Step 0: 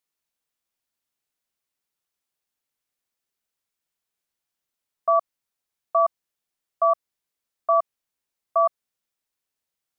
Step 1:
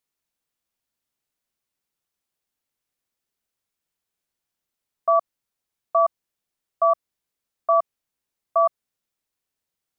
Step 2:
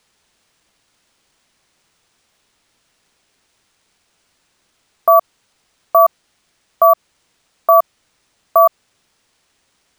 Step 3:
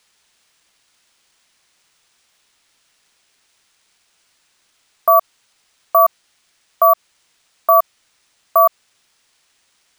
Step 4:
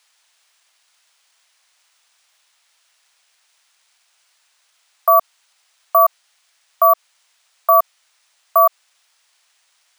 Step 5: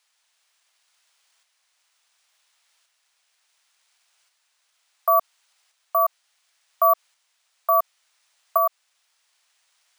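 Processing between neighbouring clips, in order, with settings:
low-shelf EQ 440 Hz +4.5 dB
decimation without filtering 3×; boost into a limiter +21.5 dB; level −1 dB
tilt shelving filter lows −5 dB, about 840 Hz; level −2 dB
high-pass filter 600 Hz 24 dB per octave
shaped tremolo saw up 0.7 Hz, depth 40%; level −4.5 dB

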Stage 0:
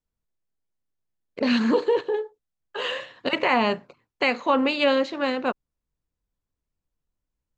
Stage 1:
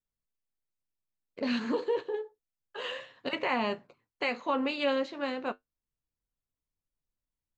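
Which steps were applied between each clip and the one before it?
flanger 0.3 Hz, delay 7.1 ms, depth 4.2 ms, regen −60%
level −4.5 dB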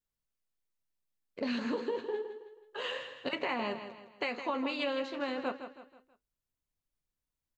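downward compressor, threshold −30 dBFS, peak gain reduction 6.5 dB
on a send: repeating echo 161 ms, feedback 41%, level −10 dB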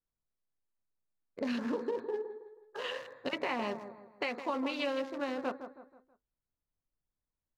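adaptive Wiener filter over 15 samples

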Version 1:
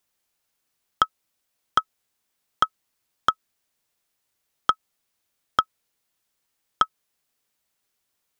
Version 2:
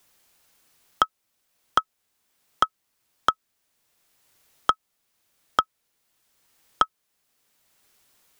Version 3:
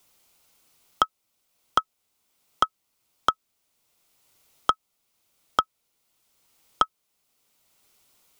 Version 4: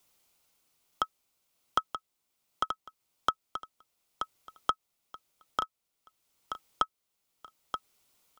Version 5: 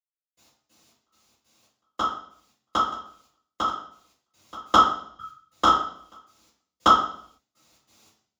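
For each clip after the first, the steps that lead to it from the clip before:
multiband upward and downward compressor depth 40%; level +1.5 dB
parametric band 1,700 Hz −9.5 dB 0.25 octaves
amplitude tremolo 0.61 Hz, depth 33%; on a send: repeating echo 929 ms, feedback 22%, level −7.5 dB; on the sum: level −6 dB
gate pattern "...x..xx..xx.xx" 140 BPM −60 dB; convolution reverb RT60 0.60 s, pre-delay 46 ms

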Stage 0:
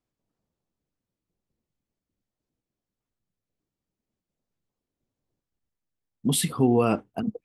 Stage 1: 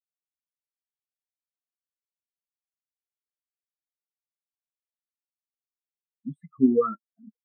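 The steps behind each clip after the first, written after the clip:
flat-topped bell 1,600 Hz +12 dB 1.3 octaves
every bin expanded away from the loudest bin 4 to 1
level −1.5 dB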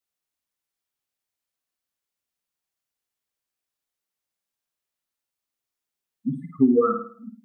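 on a send: flutter between parallel walls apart 9.1 metres, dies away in 0.46 s
on the sum: downward compressor 4 to 1, threshold −23 dBFS, peak gain reduction 8.5 dB
level +8 dB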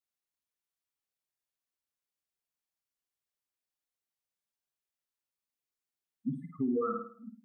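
brickwall limiter −16.5 dBFS, peak gain reduction 9 dB
buffer that repeats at 0:01.27, samples 1,024
level −7.5 dB

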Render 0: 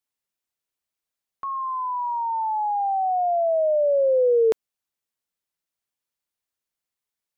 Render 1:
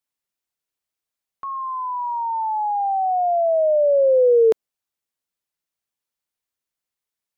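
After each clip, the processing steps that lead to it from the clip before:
dynamic equaliser 460 Hz, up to +4 dB, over −33 dBFS, Q 0.85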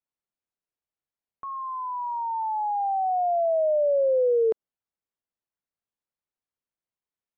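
low-pass filter 1,100 Hz 6 dB per octave
downward compressor, threshold −17 dBFS, peak gain reduction 4.5 dB
level −2.5 dB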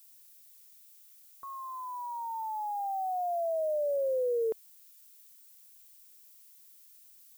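background noise violet −49 dBFS
level −8 dB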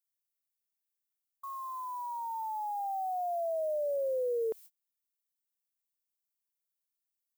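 noise gate −48 dBFS, range −32 dB
in parallel at −2 dB: brickwall limiter −36.5 dBFS, peak gain reduction 11 dB
on the sum: level −4 dB

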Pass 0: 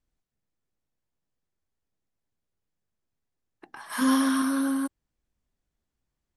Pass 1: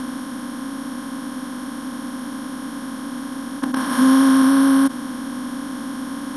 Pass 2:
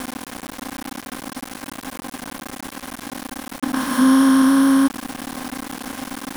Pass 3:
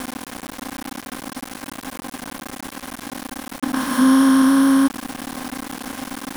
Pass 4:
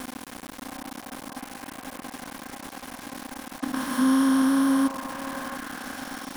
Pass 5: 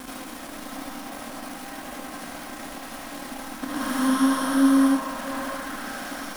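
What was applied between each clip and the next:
compressor on every frequency bin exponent 0.2; low-shelf EQ 440 Hz +11 dB
centre clipping without the shift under −25.5 dBFS
no processing that can be heard
echo through a band-pass that steps 681 ms, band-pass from 740 Hz, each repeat 1.4 octaves, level −1 dB; level −7 dB
comb and all-pass reverb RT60 0.49 s, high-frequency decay 0.6×, pre-delay 35 ms, DRR −5 dB; level −3 dB

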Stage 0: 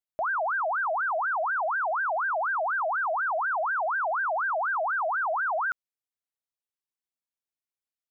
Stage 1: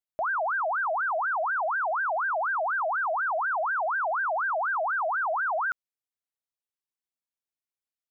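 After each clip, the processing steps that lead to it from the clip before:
no processing that can be heard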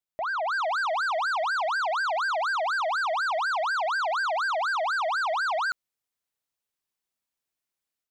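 automatic gain control gain up to 6.5 dB
soft clipping −25 dBFS, distortion −14 dB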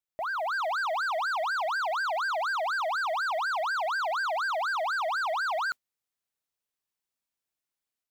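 noise that follows the level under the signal 33 dB
level −2.5 dB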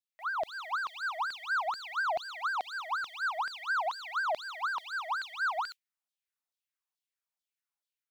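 auto-filter high-pass saw down 2.3 Hz 620–4,100 Hz
level −7 dB

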